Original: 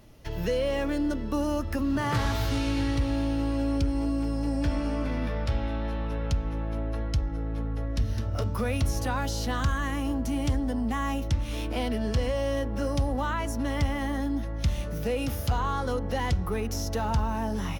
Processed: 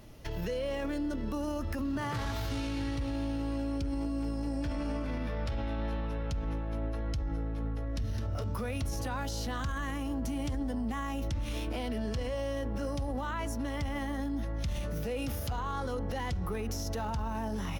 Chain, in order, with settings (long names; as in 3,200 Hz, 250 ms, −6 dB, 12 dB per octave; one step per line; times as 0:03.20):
brickwall limiter −28.5 dBFS, peak gain reduction 11.5 dB
level +1.5 dB